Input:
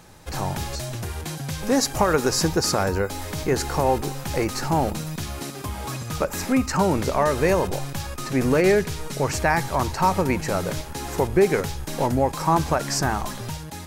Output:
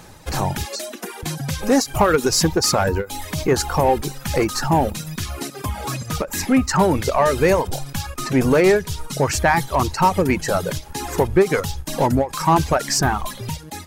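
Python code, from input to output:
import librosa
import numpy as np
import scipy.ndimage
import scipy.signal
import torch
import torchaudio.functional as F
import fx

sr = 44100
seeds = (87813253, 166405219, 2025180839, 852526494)

p1 = fx.steep_highpass(x, sr, hz=190.0, slope=72, at=(0.65, 1.23))
p2 = fx.dereverb_blind(p1, sr, rt60_s=1.4)
p3 = np.clip(p2, -10.0 ** (-20.5 / 20.0), 10.0 ** (-20.5 / 20.0))
p4 = p2 + (p3 * 10.0 ** (-4.0 / 20.0))
p5 = fx.end_taper(p4, sr, db_per_s=260.0)
y = p5 * 10.0 ** (2.0 / 20.0)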